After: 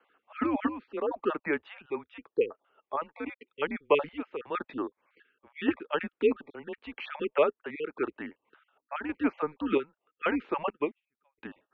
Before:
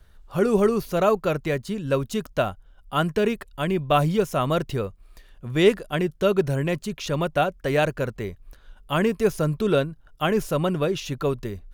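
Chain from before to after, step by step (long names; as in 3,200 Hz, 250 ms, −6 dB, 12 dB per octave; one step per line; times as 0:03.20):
time-frequency cells dropped at random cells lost 32%
square-wave tremolo 0.88 Hz, depth 60%, duty 60%
single-sideband voice off tune −150 Hz 500–3,000 Hz
0:10.70–0:11.38: expander for the loud parts 2.5 to 1, over −47 dBFS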